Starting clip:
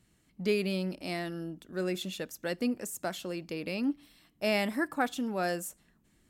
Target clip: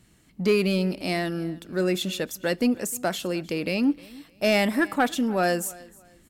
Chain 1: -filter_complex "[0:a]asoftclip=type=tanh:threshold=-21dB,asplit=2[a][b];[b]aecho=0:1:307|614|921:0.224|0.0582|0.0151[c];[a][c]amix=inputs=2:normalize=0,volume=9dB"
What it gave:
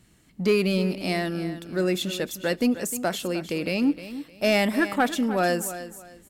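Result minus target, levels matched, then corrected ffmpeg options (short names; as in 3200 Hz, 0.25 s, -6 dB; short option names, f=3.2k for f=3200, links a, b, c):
echo-to-direct +9 dB
-filter_complex "[0:a]asoftclip=type=tanh:threshold=-21dB,asplit=2[a][b];[b]aecho=0:1:307|614:0.0794|0.0207[c];[a][c]amix=inputs=2:normalize=0,volume=9dB"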